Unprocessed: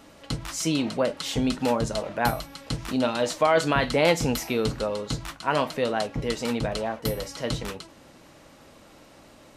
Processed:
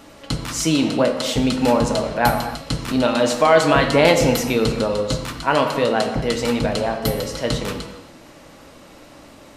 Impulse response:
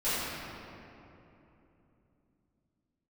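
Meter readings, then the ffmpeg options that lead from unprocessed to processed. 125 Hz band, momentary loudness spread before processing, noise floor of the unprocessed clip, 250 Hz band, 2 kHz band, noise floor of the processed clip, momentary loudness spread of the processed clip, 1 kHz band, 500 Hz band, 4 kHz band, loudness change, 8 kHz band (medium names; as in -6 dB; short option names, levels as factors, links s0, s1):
+6.5 dB, 11 LU, -52 dBFS, +7.5 dB, +7.0 dB, -45 dBFS, 11 LU, +7.0 dB, +7.5 dB, +6.5 dB, +7.0 dB, +6.5 dB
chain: -filter_complex "[0:a]asplit=2[s0][s1];[1:a]atrim=start_sample=2205,afade=t=out:st=0.34:d=0.01,atrim=end_sample=15435[s2];[s1][s2]afir=irnorm=-1:irlink=0,volume=0.188[s3];[s0][s3]amix=inputs=2:normalize=0,volume=1.78"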